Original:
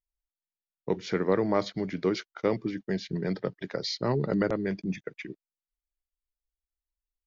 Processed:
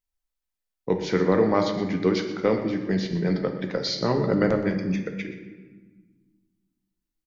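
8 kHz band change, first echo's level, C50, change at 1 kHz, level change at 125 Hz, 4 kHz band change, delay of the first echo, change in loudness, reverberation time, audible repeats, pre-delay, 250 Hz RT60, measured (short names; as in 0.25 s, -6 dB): n/a, -14.0 dB, 7.0 dB, +5.5 dB, +5.5 dB, +5.0 dB, 0.122 s, +5.5 dB, 1.4 s, 1, 4 ms, 2.1 s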